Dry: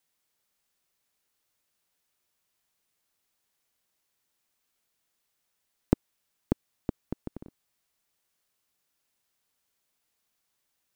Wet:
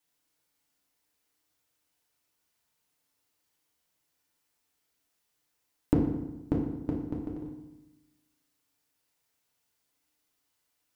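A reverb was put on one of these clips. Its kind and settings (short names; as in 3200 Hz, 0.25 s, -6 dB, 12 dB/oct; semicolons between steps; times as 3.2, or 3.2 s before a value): FDN reverb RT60 1 s, low-frequency decay 1.25×, high-frequency decay 0.75×, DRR -3 dB; gain -4 dB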